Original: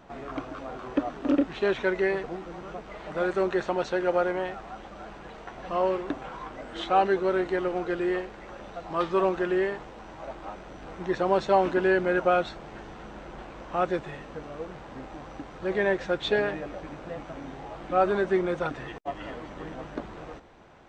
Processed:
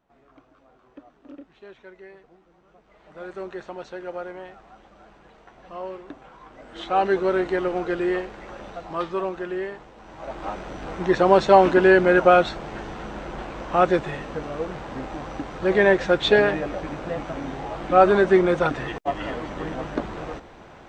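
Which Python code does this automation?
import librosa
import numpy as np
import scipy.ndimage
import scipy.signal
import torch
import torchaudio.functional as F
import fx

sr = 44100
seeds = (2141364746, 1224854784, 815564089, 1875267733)

y = fx.gain(x, sr, db=fx.line((2.63, -19.5), (3.36, -8.5), (6.39, -8.5), (7.14, 3.5), (8.69, 3.5), (9.26, -3.5), (9.95, -3.5), (10.46, 8.0)))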